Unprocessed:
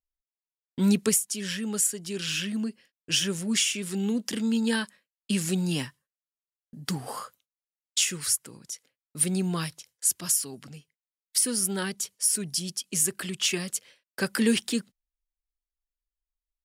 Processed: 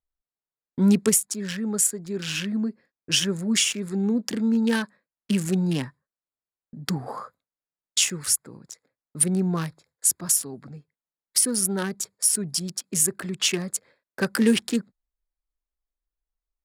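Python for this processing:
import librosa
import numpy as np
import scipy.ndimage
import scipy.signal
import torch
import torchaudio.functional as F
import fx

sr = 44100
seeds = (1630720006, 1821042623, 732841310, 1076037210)

y = fx.wiener(x, sr, points=15)
y = y * librosa.db_to_amplitude(4.0)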